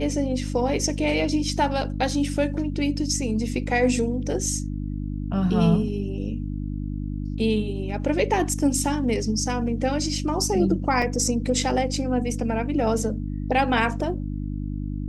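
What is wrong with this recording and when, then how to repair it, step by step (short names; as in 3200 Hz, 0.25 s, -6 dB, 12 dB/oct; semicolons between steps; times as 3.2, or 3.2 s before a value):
hum 50 Hz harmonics 6 -29 dBFS
11.02 gap 3.1 ms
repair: de-hum 50 Hz, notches 6; interpolate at 11.02, 3.1 ms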